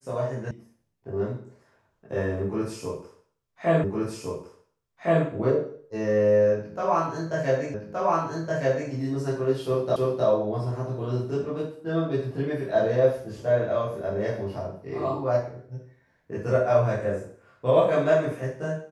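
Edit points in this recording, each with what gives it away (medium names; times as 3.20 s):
0.51 s: sound stops dead
3.84 s: repeat of the last 1.41 s
7.74 s: repeat of the last 1.17 s
9.96 s: repeat of the last 0.31 s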